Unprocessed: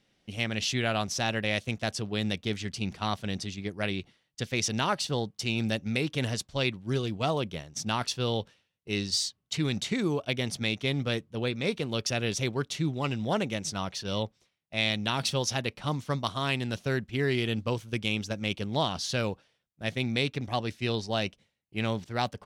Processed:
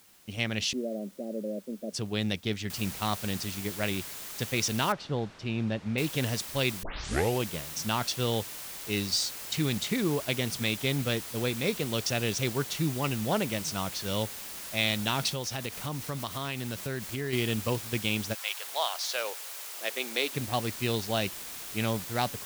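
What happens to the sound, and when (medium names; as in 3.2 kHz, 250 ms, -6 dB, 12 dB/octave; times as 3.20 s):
0.73–1.93 s: Chebyshev band-pass 190–600 Hz, order 4
2.70 s: noise floor step -59 dB -41 dB
4.92–5.98 s: tape spacing loss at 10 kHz 28 dB
6.83 s: tape start 0.62 s
15.29–17.33 s: compression 3:1, threshold -31 dBFS
18.33–20.31 s: high-pass 790 Hz -> 310 Hz 24 dB/octave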